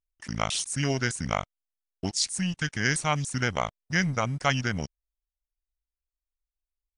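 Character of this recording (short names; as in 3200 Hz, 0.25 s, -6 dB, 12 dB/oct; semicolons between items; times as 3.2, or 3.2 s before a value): noise floor -92 dBFS; spectral tilt -3.5 dB/oct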